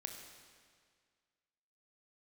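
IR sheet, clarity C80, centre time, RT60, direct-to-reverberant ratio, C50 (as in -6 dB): 6.0 dB, 48 ms, 1.9 s, 3.5 dB, 5.0 dB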